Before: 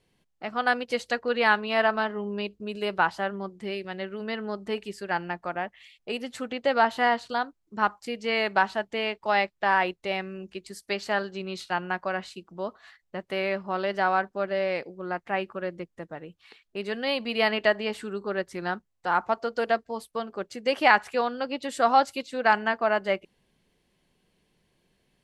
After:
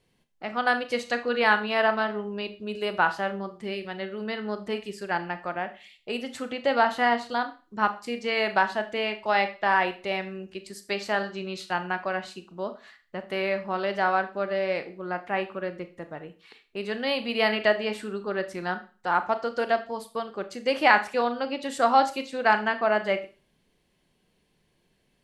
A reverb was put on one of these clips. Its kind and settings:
four-comb reverb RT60 0.36 s, combs from 26 ms, DRR 9.5 dB

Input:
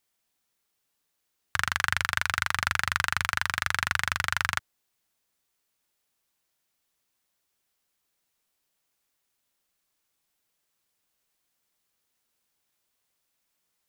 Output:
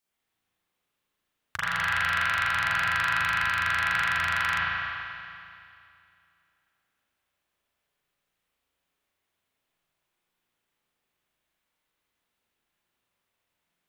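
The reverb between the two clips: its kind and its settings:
spring reverb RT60 2.5 s, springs 35/47 ms, chirp 65 ms, DRR −9.5 dB
level −7.5 dB

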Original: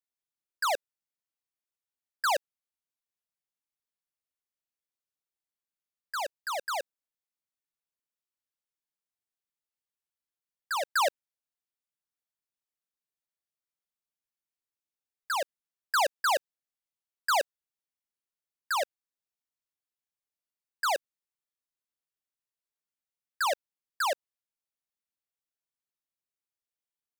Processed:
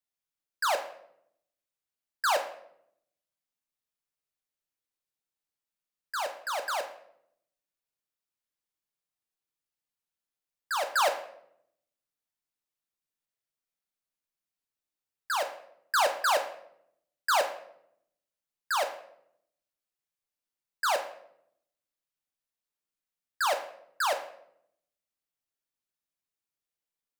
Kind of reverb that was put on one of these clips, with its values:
rectangular room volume 150 cubic metres, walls mixed, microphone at 0.49 metres

